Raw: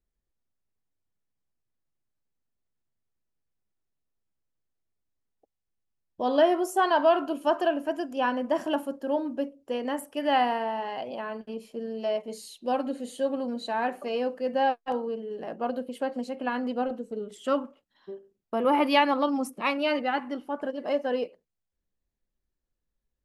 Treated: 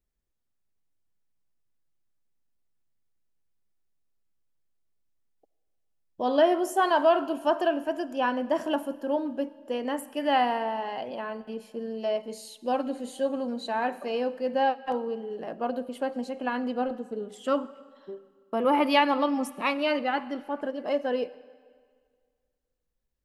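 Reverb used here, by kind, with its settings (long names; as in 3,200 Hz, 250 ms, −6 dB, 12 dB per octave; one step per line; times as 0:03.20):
comb and all-pass reverb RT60 1.9 s, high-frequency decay 0.9×, pre-delay 30 ms, DRR 18 dB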